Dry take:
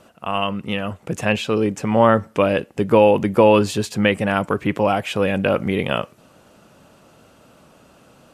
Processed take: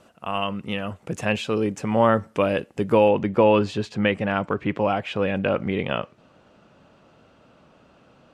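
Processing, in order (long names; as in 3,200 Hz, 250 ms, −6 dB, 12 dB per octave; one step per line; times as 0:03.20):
low-pass filter 11,000 Hz 12 dB per octave, from 0:03.08 4,100 Hz
level −4 dB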